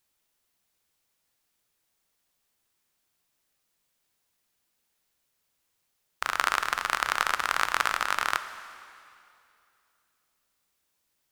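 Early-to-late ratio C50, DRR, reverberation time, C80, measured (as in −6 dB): 11.5 dB, 10.5 dB, 2.6 s, 12.5 dB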